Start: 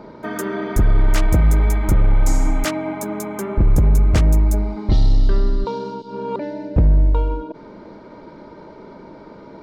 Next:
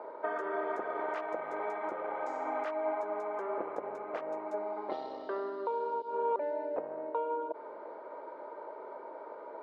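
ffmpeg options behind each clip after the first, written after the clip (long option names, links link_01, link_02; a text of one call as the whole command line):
ffmpeg -i in.wav -af "highpass=frequency=490:width=0.5412,highpass=frequency=490:width=1.3066,alimiter=limit=-21.5dB:level=0:latency=1:release=290,lowpass=1200" out.wav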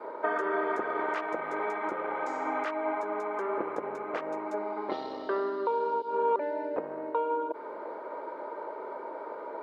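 ffmpeg -i in.wav -af "adynamicequalizer=threshold=0.00355:dfrequency=660:dqfactor=1.6:tfrequency=660:tqfactor=1.6:attack=5:release=100:ratio=0.375:range=4:mode=cutabove:tftype=bell,volume=8dB" out.wav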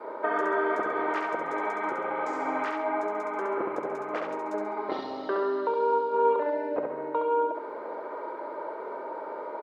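ffmpeg -i in.wav -af "aecho=1:1:68|136|204|272|340:0.631|0.246|0.096|0.0374|0.0146,volume=1dB" out.wav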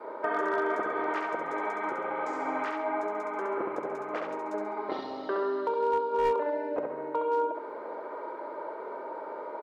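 ffmpeg -i in.wav -af "volume=18dB,asoftclip=hard,volume=-18dB,volume=-2dB" out.wav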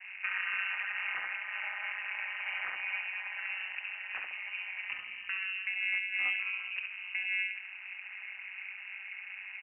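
ffmpeg -i in.wav -af "tremolo=f=190:d=0.889,lowshelf=frequency=420:gain=-7,lowpass=frequency=2600:width_type=q:width=0.5098,lowpass=frequency=2600:width_type=q:width=0.6013,lowpass=frequency=2600:width_type=q:width=0.9,lowpass=frequency=2600:width_type=q:width=2.563,afreqshift=-3100" out.wav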